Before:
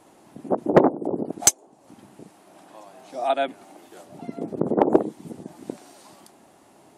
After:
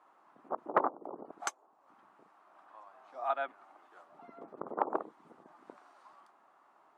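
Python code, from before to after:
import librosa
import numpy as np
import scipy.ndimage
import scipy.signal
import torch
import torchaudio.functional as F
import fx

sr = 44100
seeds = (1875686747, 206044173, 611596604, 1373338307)

y = fx.bandpass_q(x, sr, hz=1200.0, q=3.5)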